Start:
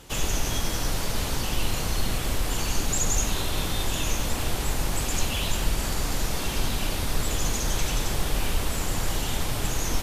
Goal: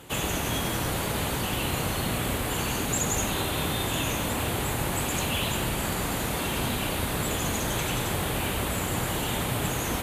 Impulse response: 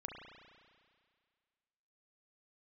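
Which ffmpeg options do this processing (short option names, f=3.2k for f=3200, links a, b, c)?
-filter_complex "[0:a]highpass=87,equalizer=f=5.4k:t=o:w=0.59:g=-12.5,asplit=2[a][b];[1:a]atrim=start_sample=2205[c];[b][c]afir=irnorm=-1:irlink=0,volume=-3.5dB[d];[a][d]amix=inputs=2:normalize=0"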